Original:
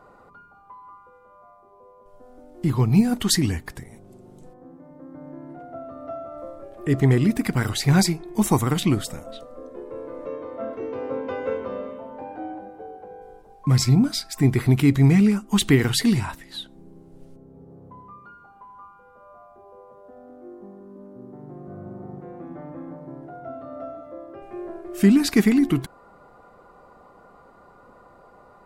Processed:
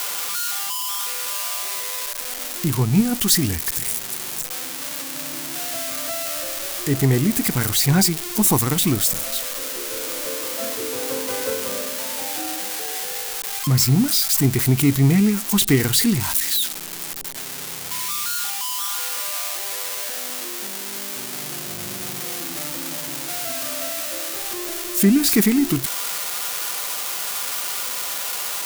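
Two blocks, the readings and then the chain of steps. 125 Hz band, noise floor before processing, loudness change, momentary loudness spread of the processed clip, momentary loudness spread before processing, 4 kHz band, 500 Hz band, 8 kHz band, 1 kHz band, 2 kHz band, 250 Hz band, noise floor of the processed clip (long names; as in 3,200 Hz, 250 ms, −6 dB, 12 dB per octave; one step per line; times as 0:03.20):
0.0 dB, −52 dBFS, 0.0 dB, 11 LU, 21 LU, +7.5 dB, +0.5 dB, +12.5 dB, +3.5 dB, +5.0 dB, 0.0 dB, −31 dBFS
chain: spike at every zero crossing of −12.5 dBFS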